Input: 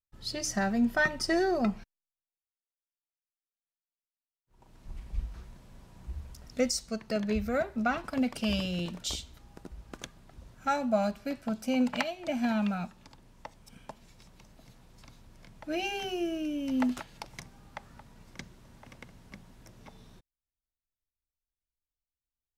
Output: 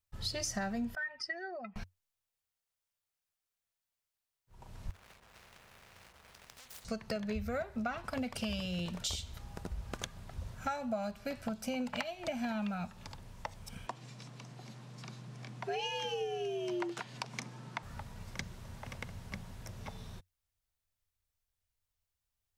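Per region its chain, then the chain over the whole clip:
0.95–1.76 spectral contrast raised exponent 1.6 + band-pass 2200 Hz, Q 1.9 + compressor 4:1, threshold -34 dBFS
4.9–6.85 median filter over 41 samples + compressor 12:1, threshold -44 dBFS + spectral compressor 10:1
13.87–17.83 LPF 8100 Hz + frequency shift +95 Hz
whole clip: bell 300 Hz -8.5 dB 0.58 oct; compressor 5:1, threshold -41 dBFS; bell 92 Hz +10.5 dB 0.33 oct; gain +6 dB

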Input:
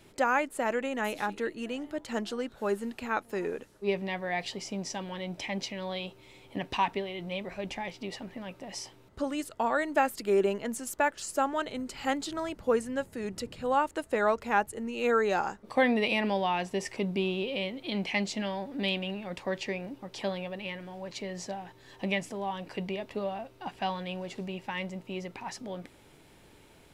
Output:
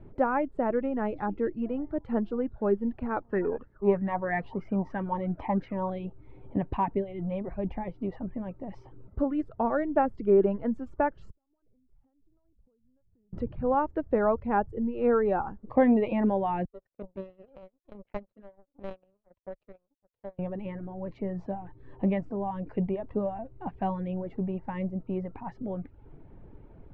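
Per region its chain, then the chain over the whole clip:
3.22–5.9 high shelf 5500 Hz -5 dB + LFO bell 3.1 Hz 890–1800 Hz +15 dB
11.3–13.33 tilt -3.5 dB/oct + compressor 12:1, threshold -36 dBFS + flipped gate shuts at -41 dBFS, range -36 dB
16.65–20.39 power-law curve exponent 3 + small resonant body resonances 560/4000 Hz, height 10 dB, ringing for 25 ms
whole clip: LPF 1400 Hz 12 dB/oct; reverb removal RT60 0.6 s; tilt -3.5 dB/oct

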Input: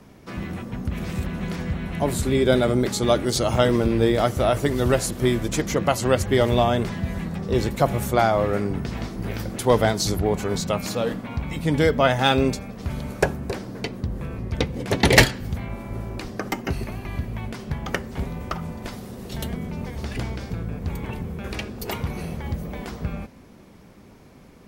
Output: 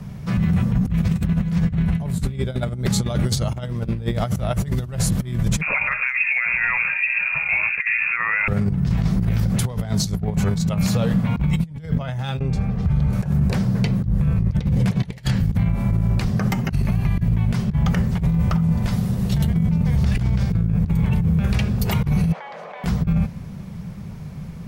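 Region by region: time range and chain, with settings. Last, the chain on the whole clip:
5.61–8.48 de-hum 438.5 Hz, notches 2 + LFO low-pass sine 1.2 Hz 740–1800 Hz + inverted band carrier 2600 Hz
12.39–13.13 LPF 2000 Hz 6 dB/oct + compressor 5:1, threshold -30 dBFS + comb 2.5 ms, depth 34%
22.32–22.84 HPF 600 Hz 24 dB/oct + tape spacing loss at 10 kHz 30 dB + fast leveller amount 100%
whole clip: resonant low shelf 220 Hz +9.5 dB, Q 3; negative-ratio compressor -19 dBFS, ratio -0.5; limiter -13 dBFS; gain +2 dB

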